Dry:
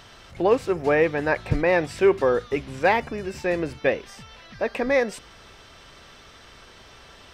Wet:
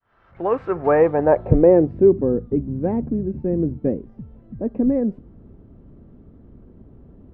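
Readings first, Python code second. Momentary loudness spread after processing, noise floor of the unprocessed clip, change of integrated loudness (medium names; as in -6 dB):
11 LU, -49 dBFS, +3.5 dB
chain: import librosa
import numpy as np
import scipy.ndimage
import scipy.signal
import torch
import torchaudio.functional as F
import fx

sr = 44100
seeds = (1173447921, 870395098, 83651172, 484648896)

y = fx.fade_in_head(x, sr, length_s=1.67)
y = fx.filter_sweep_lowpass(y, sr, from_hz=1400.0, to_hz=250.0, start_s=0.71, end_s=2.12, q=1.7)
y = y * librosa.db_to_amplitude(7.5)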